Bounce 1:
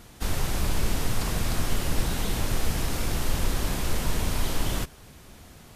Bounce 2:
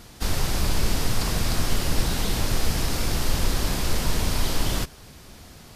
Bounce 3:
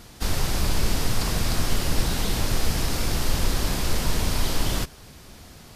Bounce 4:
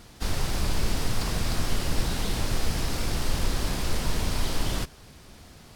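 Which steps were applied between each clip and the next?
peaking EQ 4.8 kHz +5 dB 0.61 oct; trim +2.5 dB
no audible change
decimation joined by straight lines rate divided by 2×; trim -3 dB

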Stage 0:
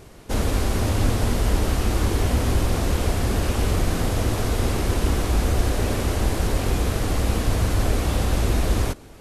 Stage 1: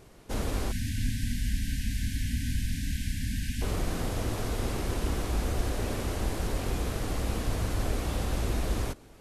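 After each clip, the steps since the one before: spectral selection erased 0.71–3.62 s, 290–1500 Hz; peaking EQ 82 Hz -6 dB 0.3 oct; trim -8 dB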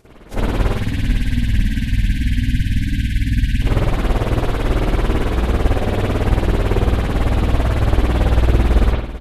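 tremolo 18 Hz, depth 70%; feedback delay 441 ms, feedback 52%, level -15.5 dB; reverberation, pre-delay 50 ms, DRR -13 dB; trim +2.5 dB

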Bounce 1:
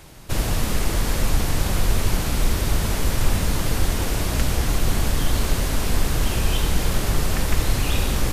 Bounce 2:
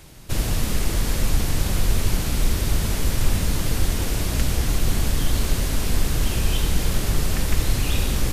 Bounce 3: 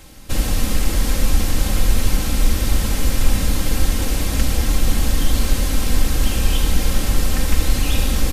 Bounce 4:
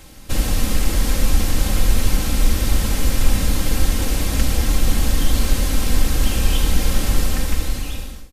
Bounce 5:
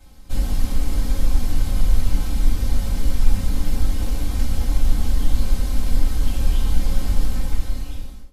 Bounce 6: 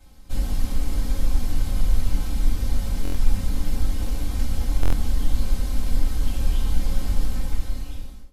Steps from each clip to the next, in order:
peaking EQ 920 Hz -4.5 dB 2.2 oct
comb 3.8 ms, depth 52%; trim +2 dB
fade out at the end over 1.15 s
reverberation, pre-delay 4 ms, DRR -5.5 dB; trim -17.5 dB
buffer glitch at 3.03/4.81 s, samples 1024, times 4; trim -3 dB

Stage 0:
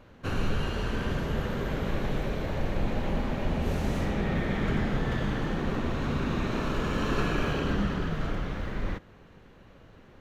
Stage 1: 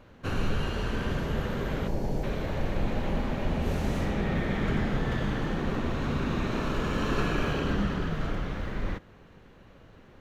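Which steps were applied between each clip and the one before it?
time-frequency box 1.87–2.24 s, 1–4.2 kHz -11 dB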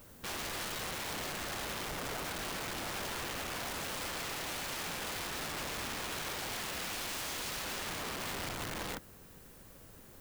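integer overflow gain 30.5 dB; added noise blue -55 dBFS; trim -4 dB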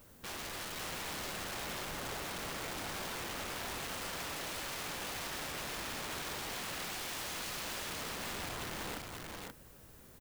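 delay 530 ms -3 dB; trim -3.5 dB

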